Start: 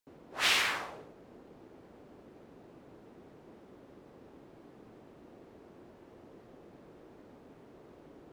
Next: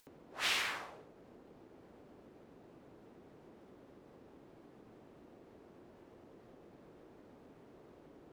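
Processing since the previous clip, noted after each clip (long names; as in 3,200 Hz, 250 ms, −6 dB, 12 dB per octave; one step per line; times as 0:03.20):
upward compression, threshold −46 dBFS
level −6.5 dB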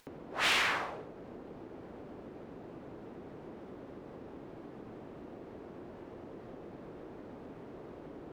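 high-shelf EQ 4,500 Hz −11.5 dB
soft clipping −33.5 dBFS, distortion −14 dB
level +11 dB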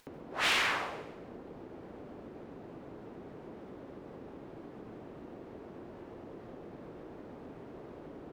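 repeating echo 140 ms, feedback 40%, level −15 dB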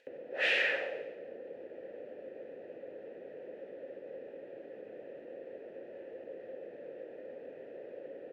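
formant filter e
level +11.5 dB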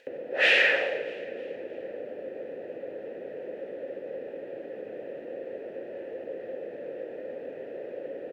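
repeating echo 312 ms, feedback 47%, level −20 dB
level +8.5 dB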